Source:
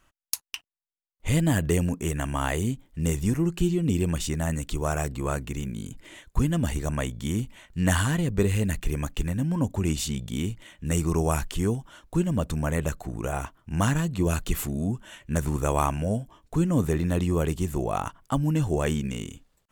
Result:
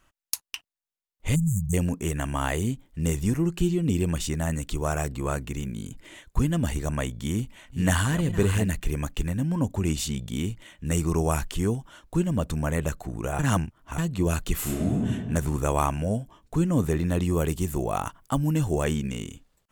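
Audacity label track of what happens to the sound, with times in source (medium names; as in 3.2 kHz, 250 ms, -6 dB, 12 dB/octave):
1.350000	1.730000	spectral selection erased 210–6000 Hz
6.930000	8.910000	chunks repeated in reverse 660 ms, level -9.5 dB
13.390000	13.980000	reverse
14.590000	15.080000	reverb throw, RT60 1.6 s, DRR -3.5 dB
17.250000	18.840000	treble shelf 8.9 kHz +7.5 dB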